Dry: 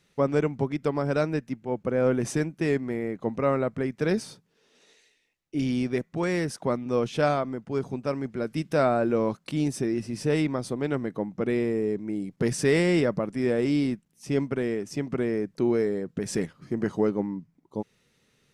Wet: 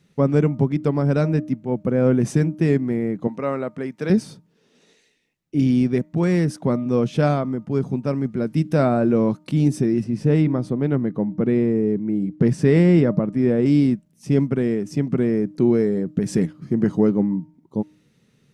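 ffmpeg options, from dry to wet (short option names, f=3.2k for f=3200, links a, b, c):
-filter_complex "[0:a]asettb=1/sr,asplit=3[a][b][c];[a]atrim=end=3.274[d];[b]atrim=start=3.27:end=4.1,asetpts=PTS-STARTPTS,afade=t=in:d=0.004:c=qsin,afade=t=out:st=0.826:d=0.004:c=qsin,highpass=f=580:p=1[e];[c]atrim=start=4.096[f];[d][e]acrossfade=d=0.004:c1=hsin:c2=qsin[g];[g][f]acrossfade=d=0.004:c1=qsin:c2=hsin,asettb=1/sr,asplit=3[h][i][j];[h]atrim=end=10.044[k];[i]atrim=start=10.04:end=13.66,asetpts=PTS-STARTPTS,afade=t=in:d=0.004:c=qsin,afade=t=out:st=3.616:d=0.004:c=qsin,highshelf=f=4.1k:g=-11[l];[j]atrim=start=13.656[m];[k][l]acrossfade=d=0.004:c1=hsin:c2=qsin[n];[n][m]acrossfade=d=0.004:c1=qsin:c2=hsin,equalizer=f=170:t=o:w=2:g=12,bandreject=f=305.9:t=h:w=4,bandreject=f=611.8:t=h:w=4,bandreject=f=917.7:t=h:w=4,bandreject=f=1.2236k:t=h:w=4"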